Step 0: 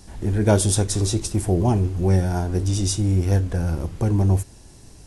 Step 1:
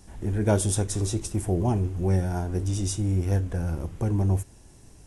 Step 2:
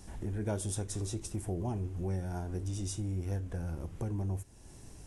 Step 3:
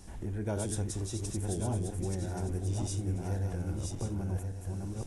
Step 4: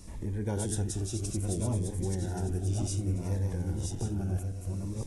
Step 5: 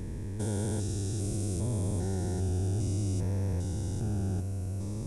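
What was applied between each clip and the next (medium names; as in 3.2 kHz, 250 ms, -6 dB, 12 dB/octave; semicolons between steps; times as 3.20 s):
peaking EQ 4.4 kHz -6 dB 0.59 oct; trim -5 dB
compression 2:1, threshold -41 dBFS, peak gain reduction 13.5 dB
backward echo that repeats 565 ms, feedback 53%, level -3 dB
Shepard-style phaser falling 0.63 Hz; trim +2.5 dB
spectrogram pixelated in time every 400 ms; trim +2 dB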